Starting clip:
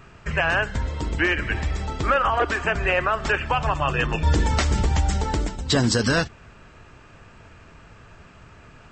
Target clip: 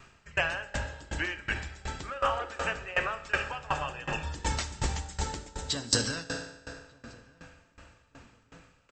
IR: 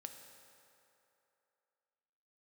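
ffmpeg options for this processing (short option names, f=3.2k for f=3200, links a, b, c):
-filter_complex "[0:a]highshelf=f=2.8k:g=10.5,bandreject=f=50:t=h:w=6,bandreject=f=100:t=h:w=6,bandreject=f=150:t=h:w=6,bandreject=f=200:t=h:w=6,bandreject=f=250:t=h:w=6,bandreject=f=300:t=h:w=6,bandreject=f=350:t=h:w=6,bandreject=f=400:t=h:w=6,bandreject=f=450:t=h:w=6,bandreject=f=500:t=h:w=6,asplit=2[a][b];[b]adelay=1191,lowpass=f=1.1k:p=1,volume=-19.5dB,asplit=2[c][d];[d]adelay=1191,lowpass=f=1.1k:p=1,volume=0.47,asplit=2[e][f];[f]adelay=1191,lowpass=f=1.1k:p=1,volume=0.47,asplit=2[g][h];[h]adelay=1191,lowpass=f=1.1k:p=1,volume=0.47[i];[a][c][e][g][i]amix=inputs=5:normalize=0[j];[1:a]atrim=start_sample=2205[k];[j][k]afir=irnorm=-1:irlink=0,aeval=exprs='val(0)*pow(10,-21*if(lt(mod(2.7*n/s,1),2*abs(2.7)/1000),1-mod(2.7*n/s,1)/(2*abs(2.7)/1000),(mod(2.7*n/s,1)-2*abs(2.7)/1000)/(1-2*abs(2.7)/1000))/20)':c=same"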